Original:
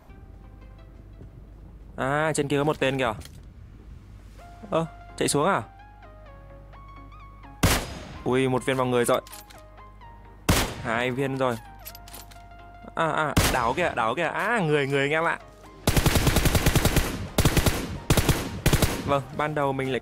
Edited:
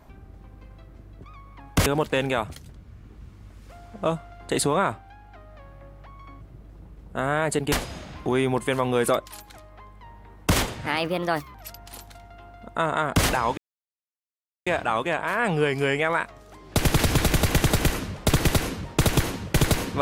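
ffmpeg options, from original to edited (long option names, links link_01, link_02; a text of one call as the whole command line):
ffmpeg -i in.wav -filter_complex "[0:a]asplit=8[link_01][link_02][link_03][link_04][link_05][link_06][link_07][link_08];[link_01]atrim=end=1.242[link_09];[link_02]atrim=start=7.098:end=7.722[link_10];[link_03]atrim=start=2.548:end=7.102[link_11];[link_04]atrim=start=1.238:end=2.552[link_12];[link_05]atrim=start=7.718:end=10.864[link_13];[link_06]atrim=start=10.86:end=11.75,asetpts=PTS-STARTPTS,asetrate=57330,aresample=44100[link_14];[link_07]atrim=start=11.746:end=13.78,asetpts=PTS-STARTPTS,afade=type=out:start_time=2.03:duration=0.004:curve=hsin,apad=pad_dur=1.09[link_15];[link_08]atrim=start=13.78,asetpts=PTS-STARTPTS,afade=type=in:duration=0.004:curve=hsin[link_16];[link_09][link_10]acrossfade=duration=0.004:curve1=hsin:curve2=hsin[link_17];[link_17][link_11]acrossfade=duration=0.004:curve1=hsin:curve2=hsin[link_18];[link_18][link_12]acrossfade=duration=0.004:curve1=hsin:curve2=hsin[link_19];[link_19][link_13]acrossfade=duration=0.004:curve1=hsin:curve2=hsin[link_20];[link_20][link_14]acrossfade=duration=0.004:curve1=hsin:curve2=hsin[link_21];[link_15][link_16]concat=n=2:v=0:a=1[link_22];[link_21][link_22]acrossfade=duration=0.004:curve1=hsin:curve2=hsin" out.wav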